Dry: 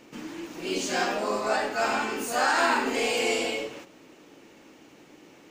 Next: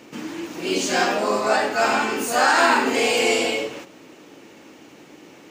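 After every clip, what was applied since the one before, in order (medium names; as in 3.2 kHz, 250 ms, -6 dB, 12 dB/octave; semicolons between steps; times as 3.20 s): high-pass 70 Hz; trim +6.5 dB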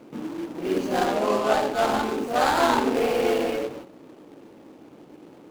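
median filter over 25 samples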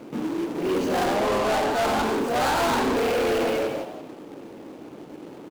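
frequency-shifting echo 168 ms, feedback 31%, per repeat +93 Hz, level -11 dB; saturation -26 dBFS, distortion -7 dB; trim +6 dB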